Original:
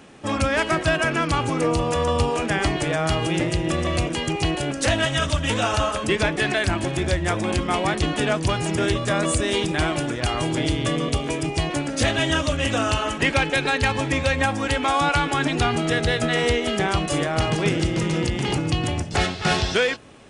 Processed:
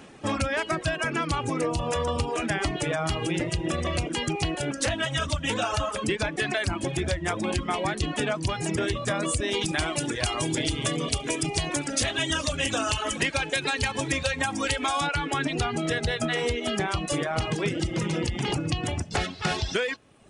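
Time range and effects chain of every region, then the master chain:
0:09.61–0:15.07: high-shelf EQ 3,300 Hz +9.5 dB + multi-tap delay 69/414 ms −18.5/−17 dB
whole clip: reverb reduction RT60 0.9 s; downward compressor, threshold −23 dBFS

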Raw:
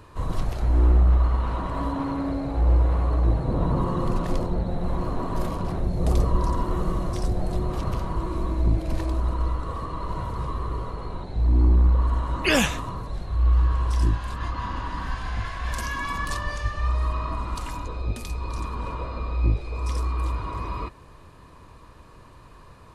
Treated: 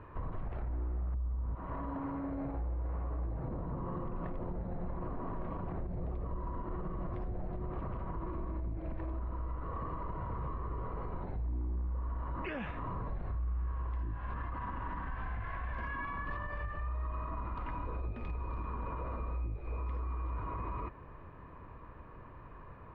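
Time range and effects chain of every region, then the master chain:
0:01.14–0:01.55: high-pass filter 58 Hz + spectral tilt −4 dB per octave
0:12.71–0:13.72: downward compressor, threshold −29 dBFS + gain into a clipping stage and back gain 27 dB
whole clip: low-pass filter 2,200 Hz 24 dB per octave; downward compressor, threshold −28 dBFS; brickwall limiter −28 dBFS; level −2.5 dB

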